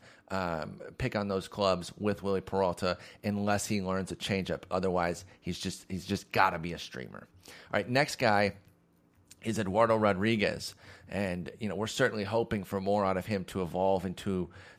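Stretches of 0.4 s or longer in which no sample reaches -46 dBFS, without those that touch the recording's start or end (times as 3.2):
8.58–9.31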